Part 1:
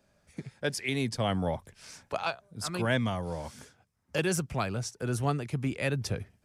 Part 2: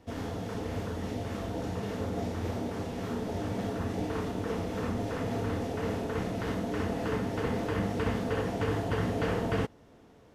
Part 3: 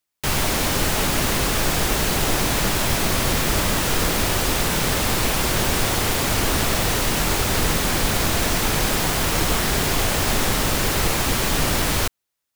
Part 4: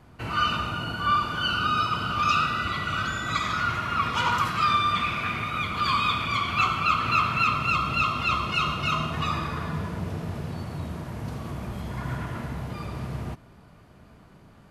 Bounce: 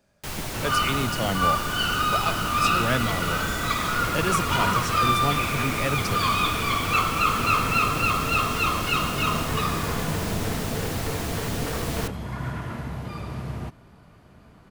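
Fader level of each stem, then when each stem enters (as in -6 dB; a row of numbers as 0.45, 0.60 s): +2.0, -2.5, -11.5, +0.5 dB; 0.00, 2.45, 0.00, 0.35 s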